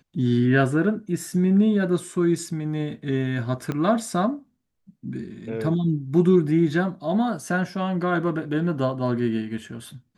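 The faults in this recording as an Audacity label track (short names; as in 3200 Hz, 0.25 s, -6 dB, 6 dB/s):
3.720000	3.720000	pop -16 dBFS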